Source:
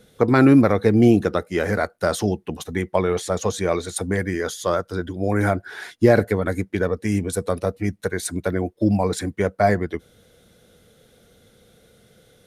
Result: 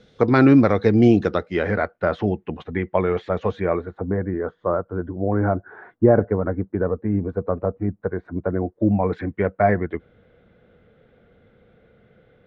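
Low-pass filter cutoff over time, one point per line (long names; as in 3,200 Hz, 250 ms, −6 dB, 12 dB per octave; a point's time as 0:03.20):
low-pass filter 24 dB per octave
0:01.22 5,400 Hz
0:01.96 2,700 Hz
0:03.54 2,700 Hz
0:03.97 1,300 Hz
0:08.51 1,300 Hz
0:09.16 2,400 Hz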